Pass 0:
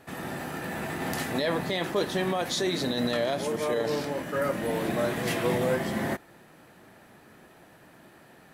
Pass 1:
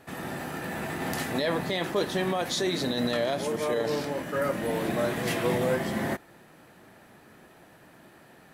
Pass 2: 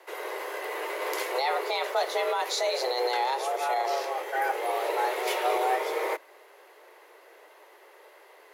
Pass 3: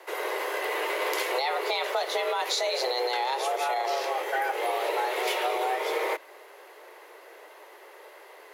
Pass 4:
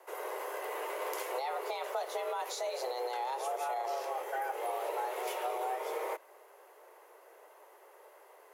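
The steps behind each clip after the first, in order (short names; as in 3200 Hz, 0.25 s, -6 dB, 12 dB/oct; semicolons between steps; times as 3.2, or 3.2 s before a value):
nothing audible
HPF 59 Hz 12 dB/oct; notch 8000 Hz, Q 7; frequency shift +250 Hz
dynamic EQ 3100 Hz, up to +4 dB, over -43 dBFS, Q 1.2; compressor, threshold -29 dBFS, peak gain reduction 8 dB; gain +4.5 dB
graphic EQ 250/2000/4000 Hz -11/-7/-10 dB; gain -5 dB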